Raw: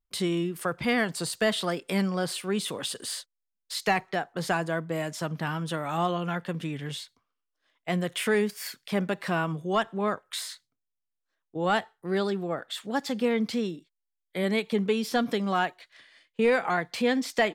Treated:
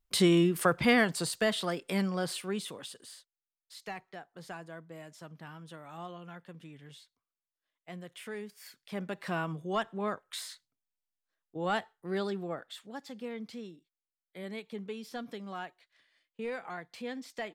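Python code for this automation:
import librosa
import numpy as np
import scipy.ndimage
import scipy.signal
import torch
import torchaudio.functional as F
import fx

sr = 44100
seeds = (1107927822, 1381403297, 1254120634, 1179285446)

y = fx.gain(x, sr, db=fx.line((0.62, 4.0), (1.5, -4.0), (2.4, -4.0), (3.15, -16.5), (8.46, -16.5), (9.33, -6.0), (12.5, -6.0), (12.97, -14.5)))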